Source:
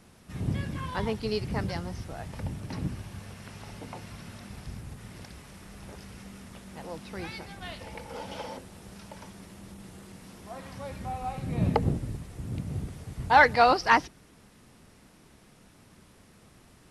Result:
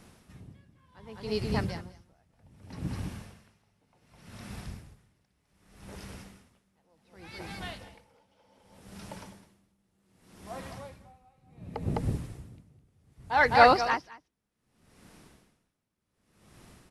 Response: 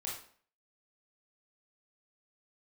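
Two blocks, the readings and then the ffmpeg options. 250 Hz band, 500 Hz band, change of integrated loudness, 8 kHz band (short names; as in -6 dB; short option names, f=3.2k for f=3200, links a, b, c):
-4.0 dB, -0.5 dB, +0.5 dB, -4.5 dB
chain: -filter_complex "[0:a]asplit=2[a][b];[b]aecho=0:1:207:0.422[c];[a][c]amix=inputs=2:normalize=0,aeval=exprs='val(0)*pow(10,-31*(0.5-0.5*cos(2*PI*0.66*n/s))/20)':c=same,volume=1.5dB"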